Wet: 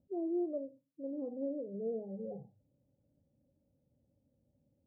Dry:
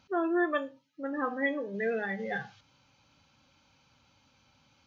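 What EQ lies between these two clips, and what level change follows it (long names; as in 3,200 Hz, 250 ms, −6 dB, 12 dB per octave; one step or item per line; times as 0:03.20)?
elliptic low-pass filter 590 Hz, stop band 60 dB
−5.0 dB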